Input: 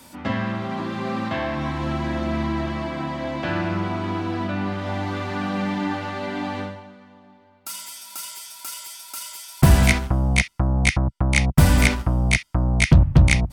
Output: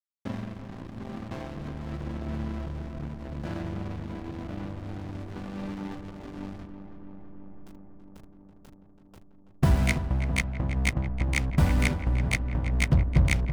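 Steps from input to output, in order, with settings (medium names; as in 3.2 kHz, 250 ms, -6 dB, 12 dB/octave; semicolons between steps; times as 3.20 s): hysteresis with a dead band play -18 dBFS; filtered feedback delay 330 ms, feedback 81%, low-pass 2.3 kHz, level -10 dB; trim -7.5 dB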